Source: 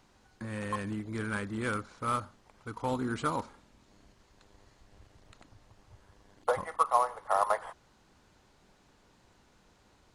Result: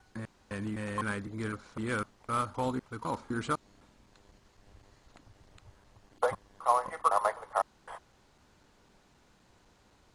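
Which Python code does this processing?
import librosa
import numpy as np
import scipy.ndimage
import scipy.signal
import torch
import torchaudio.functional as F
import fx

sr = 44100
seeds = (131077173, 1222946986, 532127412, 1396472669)

y = fx.block_reorder(x, sr, ms=254.0, group=2)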